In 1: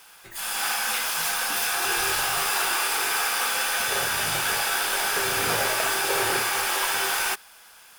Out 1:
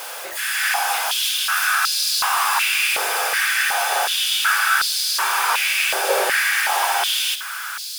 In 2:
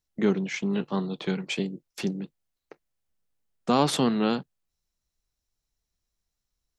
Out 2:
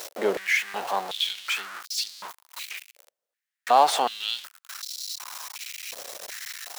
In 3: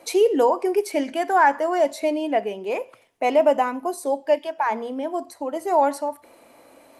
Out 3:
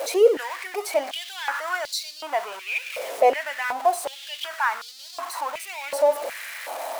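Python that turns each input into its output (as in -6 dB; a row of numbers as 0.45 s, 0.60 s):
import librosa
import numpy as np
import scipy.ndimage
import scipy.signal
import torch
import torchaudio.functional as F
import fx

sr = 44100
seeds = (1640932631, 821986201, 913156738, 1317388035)

y = x + 0.5 * 10.0 ** (-27.5 / 20.0) * np.sign(x)
y = fx.filter_held_highpass(y, sr, hz=2.7, low_hz=550.0, high_hz=4400.0)
y = librosa.util.normalize(y) * 10.0 ** (-6 / 20.0)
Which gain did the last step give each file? -0.5 dB, -1.5 dB, -3.5 dB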